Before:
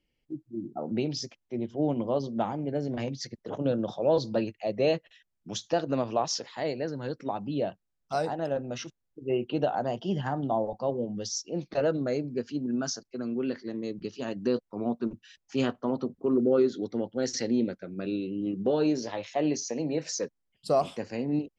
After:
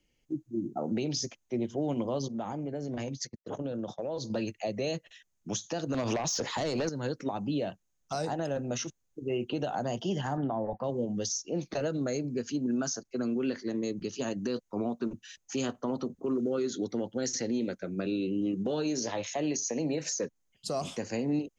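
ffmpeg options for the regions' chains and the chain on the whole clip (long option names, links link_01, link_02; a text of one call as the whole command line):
ffmpeg -i in.wav -filter_complex "[0:a]asettb=1/sr,asplit=3[link_01][link_02][link_03];[link_01]atrim=end=2.284[link_04];[link_02]atrim=start=2.28:end=4.3,asetpts=PTS-STARTPTS,afade=type=in:duration=0.004:curve=qsin,afade=type=out:start_time=2.016:duration=0.004:curve=qsin,agate=range=-33dB:threshold=-33dB:ratio=3:release=100:detection=peak,acompressor=threshold=-35dB:ratio=6:attack=3.2:release=140:knee=1:detection=peak[link_05];[link_03]atrim=start=4.296[link_06];[link_04][link_05]acrossfade=duration=0.004:curve1=hsin:curve2=qsin[link_07];[link_07][link_06]acrossfade=duration=0.004:curve1=qsin:curve2=hsin,asettb=1/sr,asplit=3[link_08][link_09][link_10];[link_08]atrim=end=5.944[link_11];[link_09]atrim=start=5.94:end=6.89,asetpts=PTS-STARTPTS,afade=type=in:duration=0.004:curve=qsin,afade=type=out:start_time=0.946:duration=0.004:curve=qsin,acompressor=threshold=-32dB:ratio=6:attack=3.2:release=140:knee=1:detection=peak,aeval=exprs='0.112*sin(PI/2*3.55*val(0)/0.112)':channel_layout=same[link_12];[link_10]atrim=start=6.886[link_13];[link_11][link_12]acrossfade=duration=0.004:curve1=hsin:curve2=qsin[link_14];[link_14][link_13]acrossfade=duration=0.004:curve1=qsin:curve2=hsin,asettb=1/sr,asplit=3[link_15][link_16][link_17];[link_15]atrim=end=10.374[link_18];[link_16]atrim=start=10.37:end=10.84,asetpts=PTS-STARTPTS,afade=type=in:duration=0.004:curve=qsin,afade=type=out:start_time=0.466:duration=0.004:curve=qsin,lowpass=frequency=1800:width_type=q:width=5.1,agate=range=-33dB:threshold=-43dB:ratio=3:release=100:detection=peak[link_19];[link_17]atrim=start=10.836[link_20];[link_18][link_19]acrossfade=duration=0.004:curve1=hsin:curve2=qsin[link_21];[link_21][link_20]acrossfade=duration=0.004:curve1=qsin:curve2=hsin,equalizer=frequency=6500:width=4.8:gain=13.5,acrossover=split=290|1300|3500[link_22][link_23][link_24][link_25];[link_22]acompressor=threshold=-36dB:ratio=4[link_26];[link_23]acompressor=threshold=-34dB:ratio=4[link_27];[link_24]acompressor=threshold=-46dB:ratio=4[link_28];[link_25]acompressor=threshold=-35dB:ratio=4[link_29];[link_26][link_27][link_28][link_29]amix=inputs=4:normalize=0,alimiter=level_in=2dB:limit=-24dB:level=0:latency=1:release=73,volume=-2dB,volume=3.5dB" out.wav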